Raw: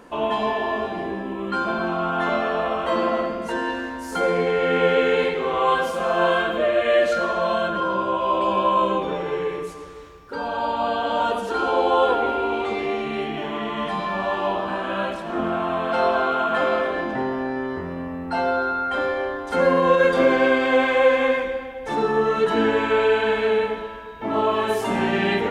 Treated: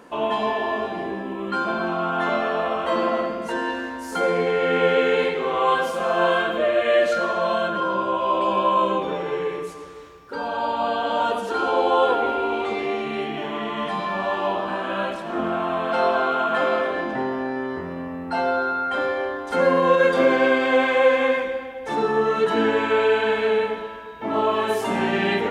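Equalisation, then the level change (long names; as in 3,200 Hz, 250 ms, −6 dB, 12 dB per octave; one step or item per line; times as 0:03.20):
high-pass filter 120 Hz 6 dB per octave
0.0 dB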